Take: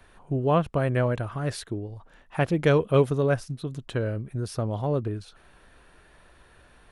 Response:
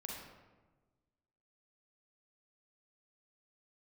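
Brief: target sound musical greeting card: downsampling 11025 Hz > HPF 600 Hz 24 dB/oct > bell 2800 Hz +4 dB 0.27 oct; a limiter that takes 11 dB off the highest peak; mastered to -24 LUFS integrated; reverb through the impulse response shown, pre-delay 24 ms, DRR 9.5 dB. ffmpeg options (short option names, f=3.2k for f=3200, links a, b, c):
-filter_complex "[0:a]alimiter=limit=-20.5dB:level=0:latency=1,asplit=2[a][b];[1:a]atrim=start_sample=2205,adelay=24[c];[b][c]afir=irnorm=-1:irlink=0,volume=-8dB[d];[a][d]amix=inputs=2:normalize=0,aresample=11025,aresample=44100,highpass=f=600:w=0.5412,highpass=f=600:w=1.3066,equalizer=f=2.8k:t=o:w=0.27:g=4,volume=14.5dB"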